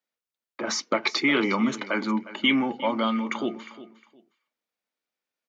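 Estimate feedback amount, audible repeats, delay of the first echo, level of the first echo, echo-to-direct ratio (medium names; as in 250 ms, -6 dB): 23%, 2, 358 ms, -16.0 dB, -16.0 dB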